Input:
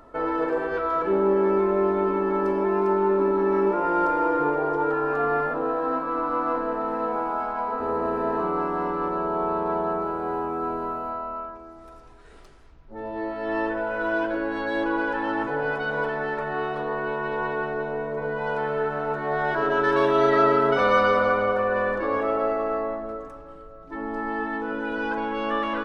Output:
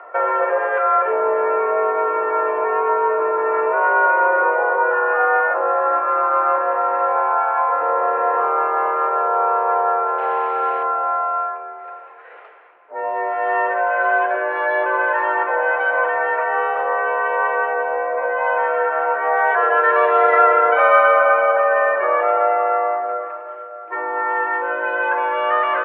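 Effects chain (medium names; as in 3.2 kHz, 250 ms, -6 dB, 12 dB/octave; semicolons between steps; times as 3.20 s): in parallel at +3 dB: compression, threshold -31 dBFS, peak gain reduction 15 dB; 10.18–10.83 s: on the sum: word length cut 6-bit, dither triangular; mistuned SSB +50 Hz 470–2500 Hz; trim +5.5 dB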